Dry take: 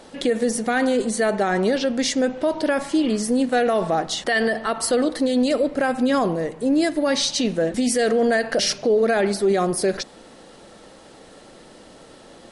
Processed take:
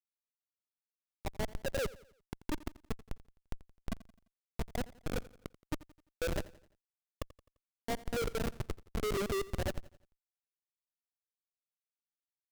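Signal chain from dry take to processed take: time reversed locally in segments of 207 ms; peak limiter -14.5 dBFS, peak gain reduction 5 dB; wah-wah 0.31 Hz 340–1100 Hz, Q 7.8; Schmitt trigger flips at -28 dBFS; on a send: feedback delay 86 ms, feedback 45%, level -19 dB; on the sum: trim +3.5 dB

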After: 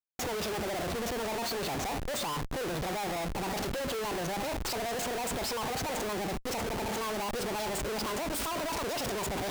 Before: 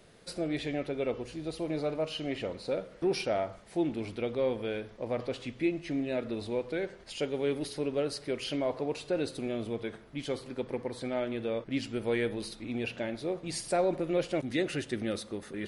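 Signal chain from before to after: gliding tape speed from 140% -> 190%; Schmitt trigger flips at -45.5 dBFS

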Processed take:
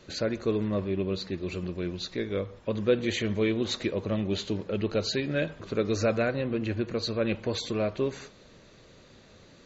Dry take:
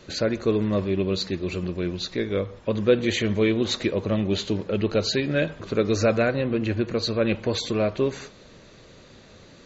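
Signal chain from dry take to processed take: 0.68–1.38 s: treble shelf 5.8 kHz -11 dB; trim -5 dB

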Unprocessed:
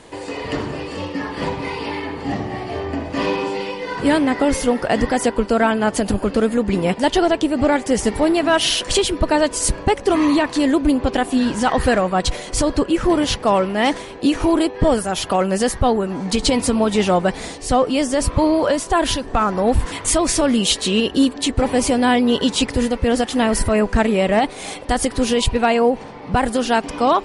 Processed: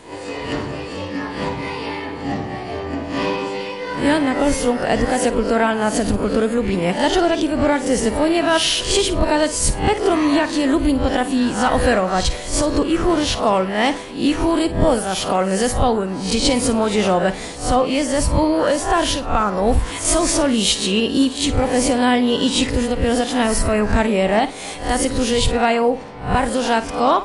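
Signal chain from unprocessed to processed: reverse spectral sustain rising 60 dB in 0.41 s; flutter echo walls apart 9 m, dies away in 0.24 s; trim -1.5 dB

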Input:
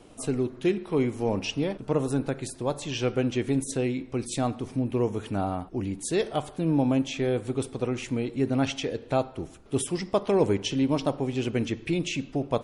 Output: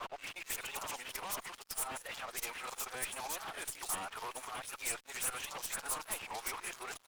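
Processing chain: reverse the whole clip; time stretch by phase-locked vocoder 0.56×; peak limiter -22 dBFS, peak gain reduction 8.5 dB; high-pass 990 Hz 24 dB/octave; peaking EQ 4.9 kHz -9.5 dB 2.6 oct; compression 3:1, threshold -51 dBFS, peak gain reduction 10 dB; sine folder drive 14 dB, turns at -36.5 dBFS; treble shelf 8 kHz +12 dB; bands offset in time lows, highs 240 ms, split 3.7 kHz; crossover distortion -50.5 dBFS; valve stage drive 32 dB, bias 0.65; warped record 45 rpm, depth 160 cents; trim +4 dB

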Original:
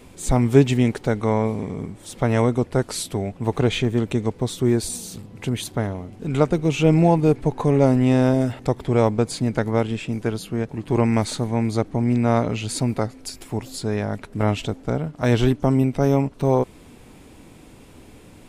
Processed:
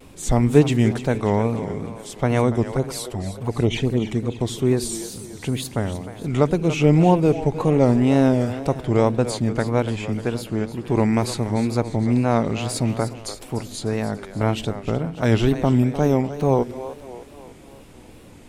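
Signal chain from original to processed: 2.64–4.41 s: touch-sensitive flanger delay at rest 5.2 ms, full sweep at -15.5 dBFS; two-band feedback delay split 350 Hz, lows 81 ms, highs 296 ms, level -12 dB; wow and flutter 110 cents

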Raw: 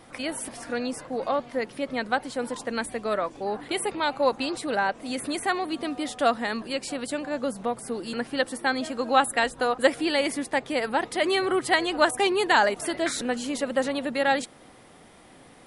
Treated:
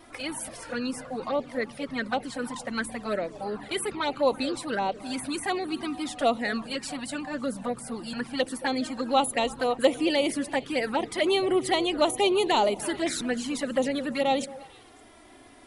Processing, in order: in parallel at -10.5 dB: saturation -22.5 dBFS, distortion -9 dB; on the sum: touch-sensitive flanger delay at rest 3.3 ms, full sweep at -19 dBFS; wow and flutter 21 cents; repeats whose band climbs or falls 111 ms, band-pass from 180 Hz, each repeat 1.4 oct, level -11.5 dB

